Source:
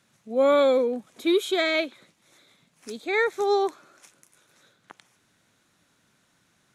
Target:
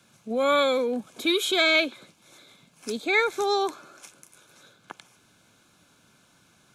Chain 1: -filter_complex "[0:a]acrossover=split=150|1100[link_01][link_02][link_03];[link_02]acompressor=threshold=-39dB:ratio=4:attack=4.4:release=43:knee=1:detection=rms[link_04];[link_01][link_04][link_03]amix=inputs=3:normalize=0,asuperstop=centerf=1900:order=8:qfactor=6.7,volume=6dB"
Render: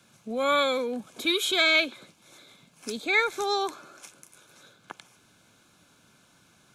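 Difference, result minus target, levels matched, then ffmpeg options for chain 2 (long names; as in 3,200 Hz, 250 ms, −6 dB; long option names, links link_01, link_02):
downward compressor: peak gain reduction +5 dB
-filter_complex "[0:a]acrossover=split=150|1100[link_01][link_02][link_03];[link_02]acompressor=threshold=-32.5dB:ratio=4:attack=4.4:release=43:knee=1:detection=rms[link_04];[link_01][link_04][link_03]amix=inputs=3:normalize=0,asuperstop=centerf=1900:order=8:qfactor=6.7,volume=6dB"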